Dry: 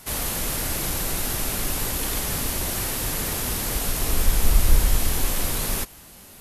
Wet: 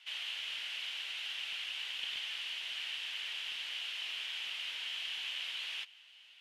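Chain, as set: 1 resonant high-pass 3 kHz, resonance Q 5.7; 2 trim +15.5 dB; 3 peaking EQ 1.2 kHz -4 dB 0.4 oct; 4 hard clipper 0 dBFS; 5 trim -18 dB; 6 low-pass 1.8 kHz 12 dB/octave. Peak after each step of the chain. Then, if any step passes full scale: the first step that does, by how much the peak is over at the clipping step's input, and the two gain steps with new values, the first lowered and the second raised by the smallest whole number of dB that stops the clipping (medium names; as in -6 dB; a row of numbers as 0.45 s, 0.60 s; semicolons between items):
-11.5 dBFS, +4.0 dBFS, +4.0 dBFS, 0.0 dBFS, -18.0 dBFS, -27.0 dBFS; step 2, 4.0 dB; step 2 +11.5 dB, step 5 -14 dB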